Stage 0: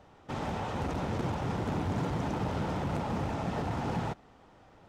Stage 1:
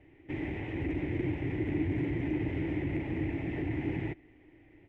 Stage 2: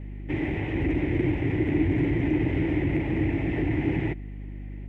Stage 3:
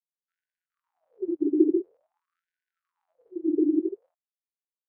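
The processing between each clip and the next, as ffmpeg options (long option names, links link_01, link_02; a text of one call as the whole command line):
ffmpeg -i in.wav -af "firequalizer=gain_entry='entry(130,0);entry(210,-11);entry(310,11);entry(470,-8);entry(1300,-21);entry(2000,8);entry(4300,-23);entry(6200,-24);entry(10000,-20)':delay=0.05:min_phase=1" out.wav
ffmpeg -i in.wav -af "aeval=exprs='val(0)+0.00708*(sin(2*PI*50*n/s)+sin(2*PI*2*50*n/s)/2+sin(2*PI*3*50*n/s)/3+sin(2*PI*4*50*n/s)/4+sin(2*PI*5*50*n/s)/5)':channel_layout=same,volume=7.5dB" out.wav
ffmpeg -i in.wav -af "afftfilt=real='re*gte(hypot(re,im),0.251)':imag='im*gte(hypot(re,im),0.251)':win_size=1024:overlap=0.75,afftfilt=real='re*gte(b*sr/1024,270*pow(1500/270,0.5+0.5*sin(2*PI*0.48*pts/sr)))':imag='im*gte(b*sr/1024,270*pow(1500/270,0.5+0.5*sin(2*PI*0.48*pts/sr)))':win_size=1024:overlap=0.75,volume=8.5dB" out.wav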